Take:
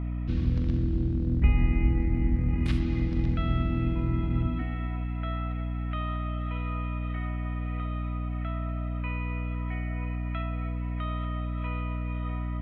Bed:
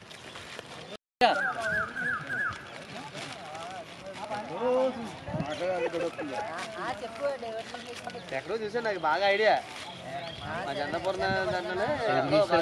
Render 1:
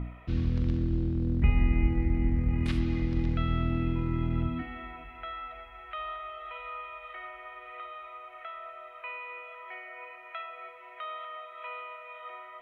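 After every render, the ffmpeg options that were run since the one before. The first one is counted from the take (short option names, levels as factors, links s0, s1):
-af "bandreject=f=60:t=h:w=4,bandreject=f=120:t=h:w=4,bandreject=f=180:t=h:w=4,bandreject=f=240:t=h:w=4,bandreject=f=300:t=h:w=4,bandreject=f=360:t=h:w=4,bandreject=f=420:t=h:w=4,bandreject=f=480:t=h:w=4,bandreject=f=540:t=h:w=4,bandreject=f=600:t=h:w=4,bandreject=f=660:t=h:w=4"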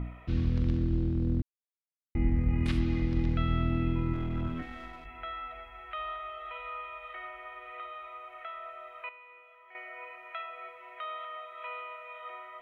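-filter_complex "[0:a]asettb=1/sr,asplit=3[s0][s1][s2];[s0]atrim=end=4.134[s3];[s1]atrim=start=4.13:end=5.06,asetpts=PTS-STARTPTS,afade=t=in:d=0.004:c=qsin,afade=t=out:st=0.926:d=0.004:c=qsin,aeval=exprs='if(lt(val(0),0),0.447*val(0),val(0))':c=same[s4];[s2]atrim=start=5.056[s5];[s3][s4]acrossfade=d=0.004:c1=hsin:c2=qsin[s6];[s6][s5]acrossfade=d=0.004:c1=qsin:c2=hsin,asplit=5[s7][s8][s9][s10][s11];[s7]atrim=end=1.42,asetpts=PTS-STARTPTS,afade=t=out:st=1.416:d=0.004:c=hsin[s12];[s8]atrim=start=1.42:end=2.15,asetpts=PTS-STARTPTS,volume=0[s13];[s9]atrim=start=2.15:end=9.092,asetpts=PTS-STARTPTS,afade=t=in:d=0.004:c=hsin[s14];[s10]atrim=start=9.088:end=9.752,asetpts=PTS-STARTPTS,volume=0.266[s15];[s11]atrim=start=9.748[s16];[s12][s13][s14]concat=n=3:v=0:a=1[s17];[s17][s15]acrossfade=d=0.004:c1=hsin:c2=hsin[s18];[s18][s16]acrossfade=d=0.004:c1=hsin:c2=hsin"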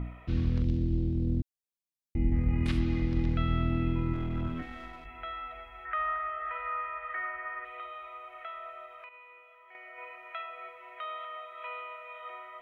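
-filter_complex "[0:a]asettb=1/sr,asplit=3[s0][s1][s2];[s0]atrim=end=0.624[s3];[s1]atrim=start=0.62:end=2.32,asetpts=PTS-STARTPTS,afade=t=in:d=0.004:c=qsin,afade=t=out:st=1.696:d=0.004:c=qsin,equalizer=f=1300:w=1.1:g=-13.5[s4];[s2]atrim=start=2.316[s5];[s3][s4]acrossfade=d=0.004:c1=hsin:c2=qsin[s6];[s6][s5]acrossfade=d=0.004:c1=qsin:c2=hsin,asettb=1/sr,asplit=3[s7][s8][s9];[s7]atrim=end=5.854[s10];[s8]atrim=start=5.85:end=7.65,asetpts=PTS-STARTPTS,afade=t=in:d=0.004:c=qsin,afade=t=out:st=1.796:d=0.004:c=qsin,lowpass=f=1700:t=q:w=4.3[s11];[s9]atrim=start=7.646[s12];[s10][s11]acrossfade=d=0.004:c1=hsin:c2=qsin[s13];[s13][s12]acrossfade=d=0.004:c1=qsin:c2=hsin,asettb=1/sr,asplit=3[s14][s15][s16];[s14]atrim=end=8.854[s17];[s15]atrim=start=8.85:end=9.98,asetpts=PTS-STARTPTS,afade=t=in:d=0.004:c=qsin,afade=t=out:st=1.126:d=0.004:c=qsin,acompressor=threshold=0.00631:ratio=6:attack=3.2:release=140:knee=1:detection=peak[s18];[s16]atrim=start=9.976[s19];[s17][s18]acrossfade=d=0.004:c1=hsin:c2=qsin[s20];[s20][s19]acrossfade=d=0.004:c1=qsin:c2=hsin"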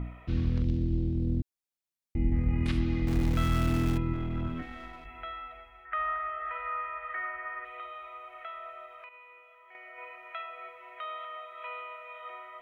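-filter_complex "[0:a]asettb=1/sr,asplit=3[s0][s1][s2];[s0]atrim=end=3.074[s3];[s1]atrim=start=3.07:end=3.98,asetpts=PTS-STARTPTS,afade=t=in:d=0.004:c=qsin,afade=t=out:st=0.906:d=0.004:c=qsin,aeval=exprs='val(0)+0.5*0.0237*sgn(val(0))':c=same[s4];[s2]atrim=start=3.976[s5];[s3][s4]acrossfade=d=0.004:c1=hsin:c2=qsin[s6];[s6][s5]acrossfade=d=0.004:c1=qsin:c2=hsin,asplit=2[s7][s8];[s7]atrim=end=5.92,asetpts=PTS-STARTPTS,afade=t=out:st=5.2:d=0.72:silence=0.354813[s9];[s8]atrim=start=5.92,asetpts=PTS-STARTPTS,afade=t=in:d=0.004:c=hsin:silence=0.354813[s10];[s9][s10]concat=n=2:v=0:a=1"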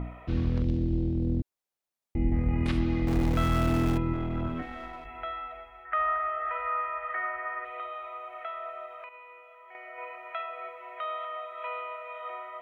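-af "equalizer=f=670:t=o:w=2:g=7.5"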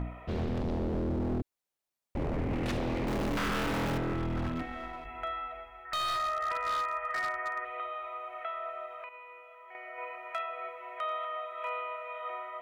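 -af "aeval=exprs='0.0473*(abs(mod(val(0)/0.0473+3,4)-2)-1)':c=same"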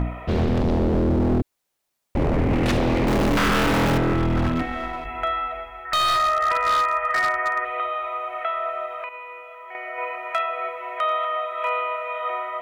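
-af "volume=3.76"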